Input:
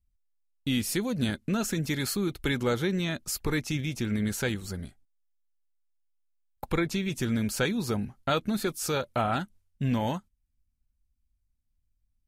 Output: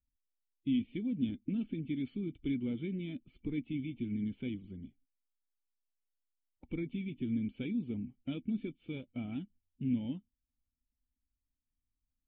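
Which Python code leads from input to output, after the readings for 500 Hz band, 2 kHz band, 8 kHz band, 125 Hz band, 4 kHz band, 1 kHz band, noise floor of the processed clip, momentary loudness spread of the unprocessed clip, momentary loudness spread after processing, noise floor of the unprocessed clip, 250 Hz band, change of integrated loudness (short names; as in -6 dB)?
-15.5 dB, -18.5 dB, under -40 dB, -10.5 dB, -19.0 dB, under -30 dB, under -85 dBFS, 5 LU, 9 LU, -76 dBFS, -5.0 dB, -8.5 dB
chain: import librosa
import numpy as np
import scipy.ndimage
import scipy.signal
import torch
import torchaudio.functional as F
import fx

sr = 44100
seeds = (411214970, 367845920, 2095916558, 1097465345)

y = fx.spec_quant(x, sr, step_db=15)
y = fx.formant_cascade(y, sr, vowel='i')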